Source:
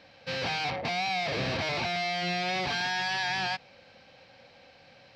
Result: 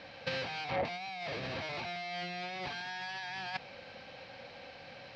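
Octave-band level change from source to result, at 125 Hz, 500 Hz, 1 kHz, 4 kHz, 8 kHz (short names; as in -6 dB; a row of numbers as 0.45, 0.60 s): -8.5, -5.5, -8.5, -10.0, -13.5 dB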